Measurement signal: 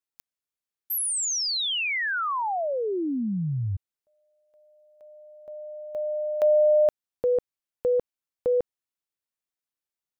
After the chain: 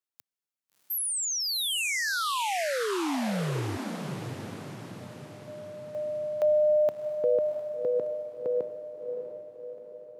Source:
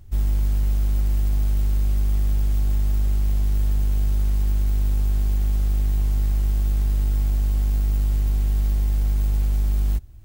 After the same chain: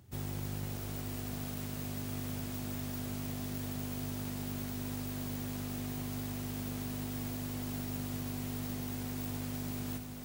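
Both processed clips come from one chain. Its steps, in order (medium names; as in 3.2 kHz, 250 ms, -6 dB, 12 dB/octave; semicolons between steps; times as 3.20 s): high-pass 110 Hz 24 dB/octave; echo that smears into a reverb 676 ms, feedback 52%, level -6 dB; trim -3 dB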